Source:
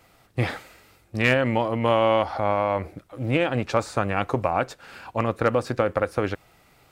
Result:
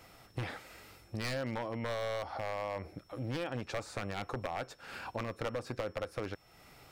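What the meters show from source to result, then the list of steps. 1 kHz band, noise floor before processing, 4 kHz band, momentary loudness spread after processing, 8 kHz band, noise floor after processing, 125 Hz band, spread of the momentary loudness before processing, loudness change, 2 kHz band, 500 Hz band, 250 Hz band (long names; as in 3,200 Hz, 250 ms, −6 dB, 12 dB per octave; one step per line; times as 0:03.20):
−15.5 dB, −59 dBFS, −10.5 dB, 10 LU, −7.5 dB, −61 dBFS, −13.0 dB, 12 LU, −15.0 dB, −14.0 dB, −15.0 dB, −14.5 dB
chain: wavefolder on the positive side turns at −15.5 dBFS
downward compressor 2.5 to 1, threshold −41 dBFS, peak gain reduction 15 dB
steady tone 5,400 Hz −68 dBFS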